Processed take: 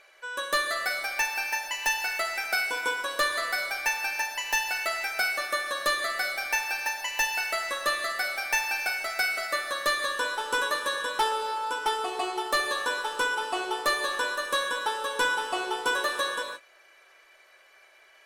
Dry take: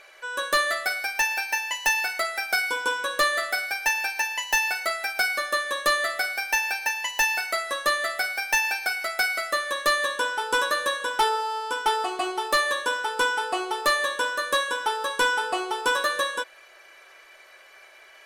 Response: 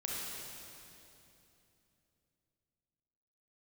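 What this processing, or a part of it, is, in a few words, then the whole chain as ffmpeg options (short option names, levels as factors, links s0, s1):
keyed gated reverb: -filter_complex "[0:a]asplit=3[s0][s1][s2];[1:a]atrim=start_sample=2205[s3];[s1][s3]afir=irnorm=-1:irlink=0[s4];[s2]apad=whole_len=805213[s5];[s4][s5]sidechaingate=range=0.0224:threshold=0.00708:ratio=16:detection=peak,volume=0.562[s6];[s0][s6]amix=inputs=2:normalize=0,volume=0.473"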